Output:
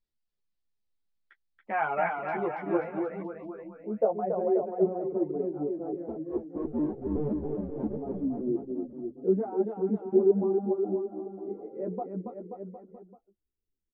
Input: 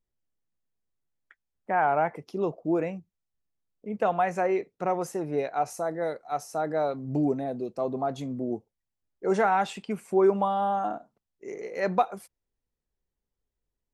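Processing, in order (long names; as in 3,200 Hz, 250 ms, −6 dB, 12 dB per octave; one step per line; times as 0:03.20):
0:06.08–0:07.97: sub-harmonics by changed cycles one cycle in 2, inverted
reverb reduction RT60 1.3 s
low-pass filter sweep 4,400 Hz → 340 Hz, 0:01.21–0:04.69
on a send: bouncing-ball delay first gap 280 ms, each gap 0.9×, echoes 5
on the sum: string-ensemble chorus
level −1 dB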